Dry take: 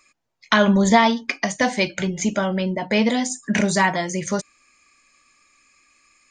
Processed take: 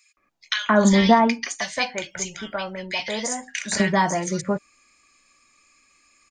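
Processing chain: 1.28–3.63 bell 220 Hz -14.5 dB 2.5 oct; bands offset in time highs, lows 0.17 s, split 1800 Hz

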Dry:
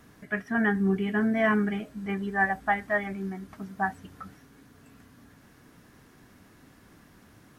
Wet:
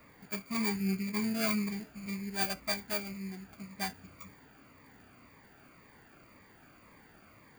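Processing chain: sample sorter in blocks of 16 samples; band noise 230–2500 Hz -52 dBFS; formant shift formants -3 st; cascading phaser falling 1.9 Hz; gain -6.5 dB

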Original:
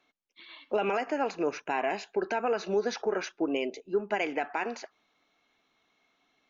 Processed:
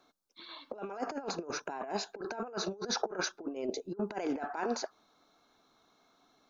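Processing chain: band shelf 2400 Hz -12 dB 1 oct; negative-ratio compressor -35 dBFS, ratio -0.5

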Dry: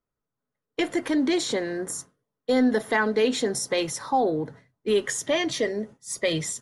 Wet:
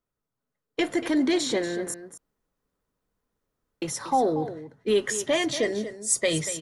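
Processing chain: 1.94–3.82 room tone; 5.63–6.27 bell 8400 Hz +12.5 dB 0.78 oct; echo 0.236 s -12.5 dB

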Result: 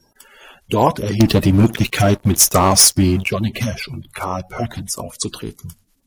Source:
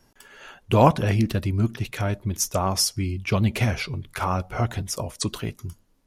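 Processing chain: bin magnitudes rounded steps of 30 dB; high shelf 5900 Hz +8.5 dB; 1.2–3.28 sample leveller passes 3; gain +1.5 dB

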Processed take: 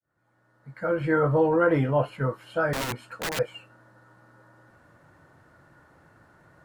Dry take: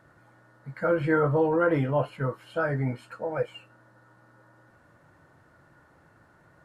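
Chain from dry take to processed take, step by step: opening faded in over 1.40 s; 2.73–3.39 wrapped overs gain 27 dB; gain +2 dB

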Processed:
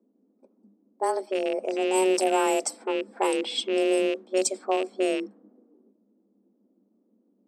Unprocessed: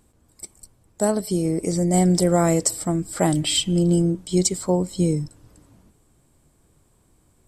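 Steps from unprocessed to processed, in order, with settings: rattling part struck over -23 dBFS, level -19 dBFS; frequency shift +190 Hz; low-pass opened by the level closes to 400 Hz, open at -14 dBFS; gain -5 dB

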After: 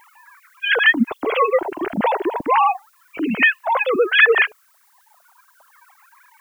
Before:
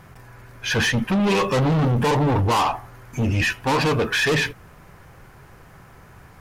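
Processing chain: sine-wave speech; reverb removal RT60 1.7 s; added noise blue -62 dBFS; gain +3 dB

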